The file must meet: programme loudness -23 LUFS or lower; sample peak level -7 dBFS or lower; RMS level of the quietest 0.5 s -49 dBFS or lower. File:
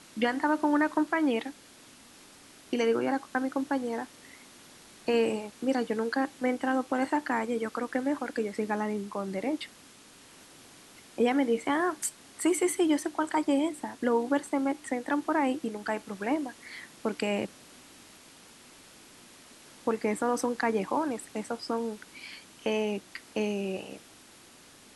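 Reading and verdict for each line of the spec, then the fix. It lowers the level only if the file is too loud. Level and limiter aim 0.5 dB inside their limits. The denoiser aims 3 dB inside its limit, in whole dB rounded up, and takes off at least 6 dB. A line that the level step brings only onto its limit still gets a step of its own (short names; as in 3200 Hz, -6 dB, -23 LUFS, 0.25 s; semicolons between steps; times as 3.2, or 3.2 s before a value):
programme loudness -30.0 LUFS: OK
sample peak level -13.0 dBFS: OK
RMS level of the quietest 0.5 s -54 dBFS: OK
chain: none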